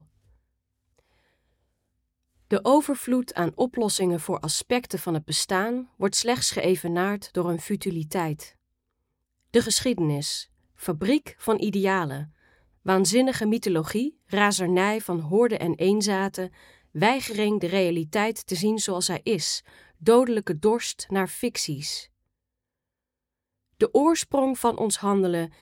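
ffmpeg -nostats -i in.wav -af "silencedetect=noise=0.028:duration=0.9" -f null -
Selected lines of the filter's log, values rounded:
silence_start: 0.00
silence_end: 2.51 | silence_duration: 2.51
silence_start: 8.43
silence_end: 9.54 | silence_duration: 1.11
silence_start: 22.01
silence_end: 23.81 | silence_duration: 1.80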